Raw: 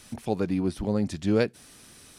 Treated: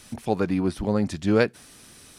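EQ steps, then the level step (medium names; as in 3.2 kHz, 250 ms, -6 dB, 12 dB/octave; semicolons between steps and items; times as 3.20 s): dynamic bell 1.3 kHz, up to +6 dB, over -41 dBFS, Q 0.77; +2.0 dB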